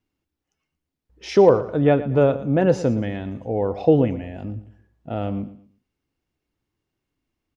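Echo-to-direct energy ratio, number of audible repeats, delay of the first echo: -14.5 dB, 2, 0.115 s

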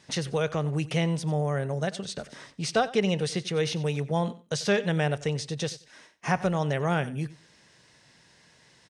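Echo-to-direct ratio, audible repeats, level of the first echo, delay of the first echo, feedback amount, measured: -18.0 dB, 2, -18.0 dB, 92 ms, 19%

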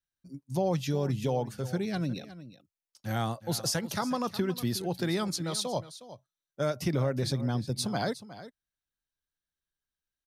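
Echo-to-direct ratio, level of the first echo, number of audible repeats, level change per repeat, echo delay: -15.0 dB, -15.0 dB, 1, no steady repeat, 0.362 s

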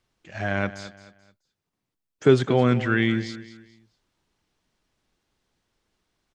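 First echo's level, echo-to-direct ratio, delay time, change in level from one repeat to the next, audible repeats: -14.5 dB, -14.0 dB, 0.216 s, -9.5 dB, 3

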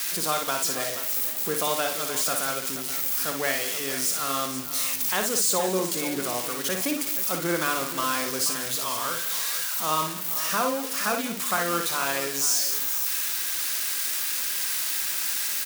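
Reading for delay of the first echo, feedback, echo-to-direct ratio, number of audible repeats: 58 ms, no steady repeat, -4.5 dB, 3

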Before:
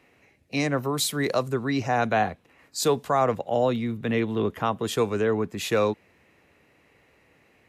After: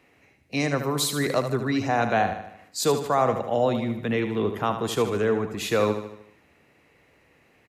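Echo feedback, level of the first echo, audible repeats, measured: 51%, -9.0 dB, 5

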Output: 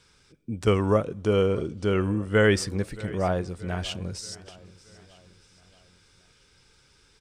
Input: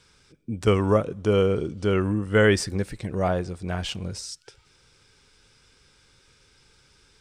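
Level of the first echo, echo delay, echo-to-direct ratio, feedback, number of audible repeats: -20.0 dB, 0.627 s, -19.0 dB, 50%, 3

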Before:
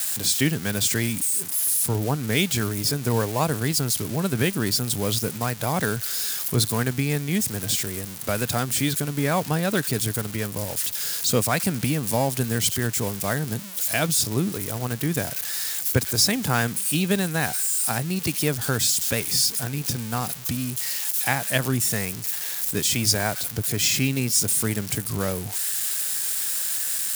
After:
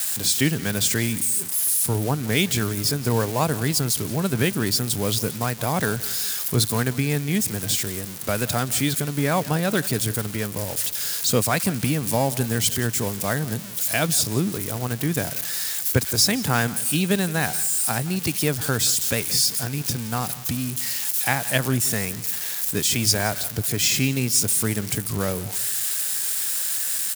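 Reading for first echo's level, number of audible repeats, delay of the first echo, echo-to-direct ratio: -18.5 dB, 2, 0.173 s, -18.0 dB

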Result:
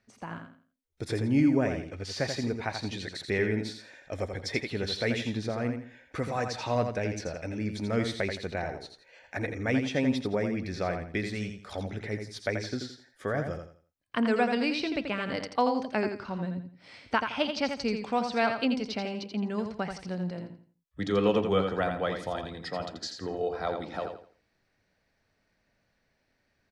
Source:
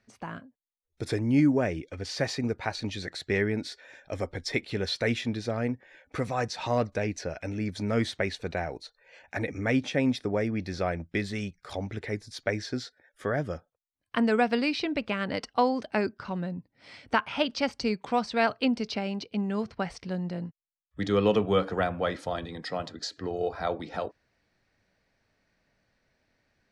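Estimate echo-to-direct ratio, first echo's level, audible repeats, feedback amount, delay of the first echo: -6.0 dB, -6.5 dB, 3, 29%, 84 ms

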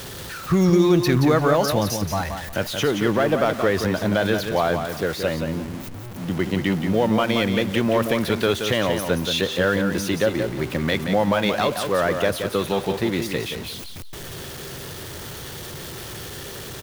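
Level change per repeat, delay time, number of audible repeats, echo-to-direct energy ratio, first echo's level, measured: -13.0 dB, 0.176 s, 2, -7.0 dB, -7.0 dB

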